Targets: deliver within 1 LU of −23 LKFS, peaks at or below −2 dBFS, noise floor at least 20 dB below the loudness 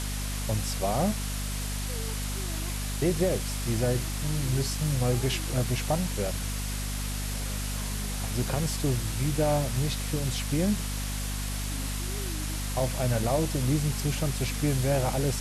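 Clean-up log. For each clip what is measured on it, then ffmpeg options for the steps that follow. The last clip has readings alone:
mains hum 50 Hz; hum harmonics up to 250 Hz; level of the hum −30 dBFS; background noise floor −32 dBFS; target noise floor −49 dBFS; integrated loudness −29.0 LKFS; sample peak −14.0 dBFS; target loudness −23.0 LKFS
→ -af "bandreject=frequency=50:width_type=h:width=4,bandreject=frequency=100:width_type=h:width=4,bandreject=frequency=150:width_type=h:width=4,bandreject=frequency=200:width_type=h:width=4,bandreject=frequency=250:width_type=h:width=4"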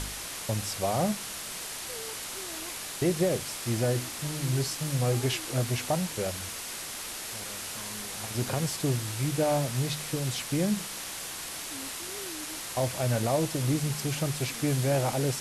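mains hum none found; background noise floor −38 dBFS; target noise floor −51 dBFS
→ -af "afftdn=noise_reduction=13:noise_floor=-38"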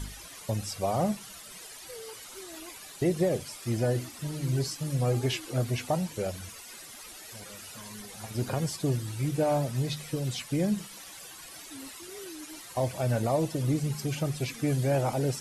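background noise floor −46 dBFS; target noise floor −51 dBFS
→ -af "afftdn=noise_reduction=6:noise_floor=-46"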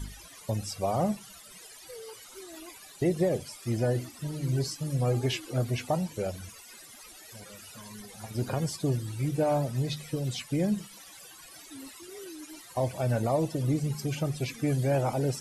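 background noise floor −50 dBFS; integrated loudness −30.0 LKFS; sample peak −16.5 dBFS; target loudness −23.0 LKFS
→ -af "volume=7dB"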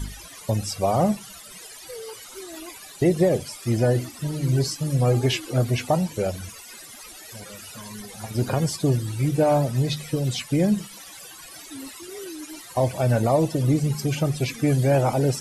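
integrated loudness −23.0 LKFS; sample peak −9.5 dBFS; background noise floor −43 dBFS

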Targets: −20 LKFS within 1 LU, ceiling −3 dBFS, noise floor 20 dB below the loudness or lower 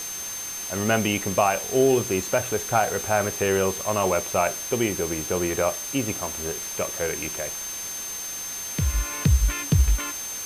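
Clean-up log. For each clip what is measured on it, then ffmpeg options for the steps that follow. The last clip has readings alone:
interfering tone 6,300 Hz; level of the tone −32 dBFS; background noise floor −33 dBFS; target noise floor −45 dBFS; integrated loudness −24.5 LKFS; sample peak −8.0 dBFS; target loudness −20.0 LKFS
→ -af "bandreject=frequency=6300:width=30"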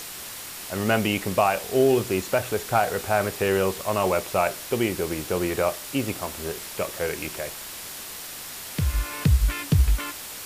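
interfering tone none found; background noise floor −38 dBFS; target noise floor −46 dBFS
→ -af "afftdn=noise_reduction=8:noise_floor=-38"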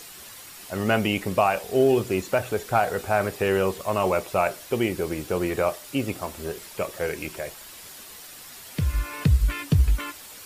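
background noise floor −44 dBFS; target noise floor −45 dBFS
→ -af "afftdn=noise_reduction=6:noise_floor=-44"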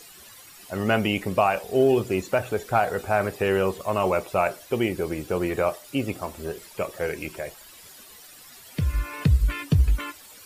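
background noise floor −48 dBFS; integrated loudness −25.0 LKFS; sample peak −8.5 dBFS; target loudness −20.0 LKFS
→ -af "volume=5dB"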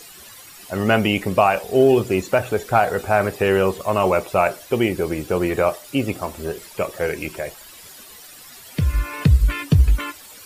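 integrated loudness −20.0 LKFS; sample peak −3.5 dBFS; background noise floor −43 dBFS

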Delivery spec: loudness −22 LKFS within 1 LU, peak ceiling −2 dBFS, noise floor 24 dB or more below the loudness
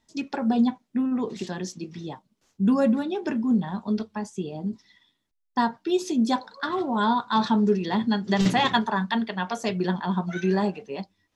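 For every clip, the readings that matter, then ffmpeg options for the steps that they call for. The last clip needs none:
integrated loudness −25.5 LKFS; sample peak −7.5 dBFS; target loudness −22.0 LKFS
→ -af "volume=3.5dB"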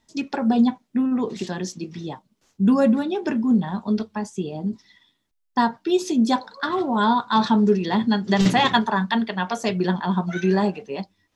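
integrated loudness −22.0 LKFS; sample peak −4.0 dBFS; background noise floor −72 dBFS

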